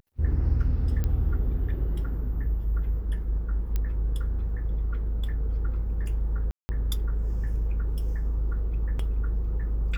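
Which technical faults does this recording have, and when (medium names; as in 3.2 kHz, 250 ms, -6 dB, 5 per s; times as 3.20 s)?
1.04 s: pop -18 dBFS
3.76 s: pop -16 dBFS
6.51–6.69 s: dropout 180 ms
8.99 s: dropout 3.7 ms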